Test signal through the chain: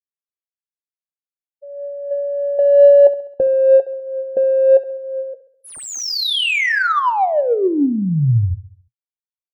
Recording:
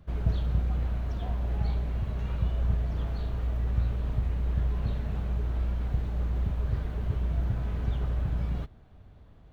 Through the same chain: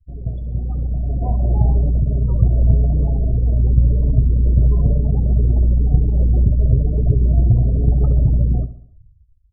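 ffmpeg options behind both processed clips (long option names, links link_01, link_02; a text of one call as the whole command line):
ffmpeg -i in.wav -af "afftfilt=real='re*gte(hypot(re,im),0.02)':imag='im*gte(hypot(re,im),0.02)':win_size=1024:overlap=0.75,afftdn=noise_reduction=26:noise_floor=-45,dynaudnorm=framelen=180:gausssize=11:maxgain=15dB,flanger=delay=6.8:depth=1.7:regen=51:speed=1:shape=sinusoidal,adynamicsmooth=sensitivity=1:basefreq=2700,aecho=1:1:67|134|201|268|335:0.168|0.0856|0.0437|0.0223|0.0114,volume=5.5dB" out.wav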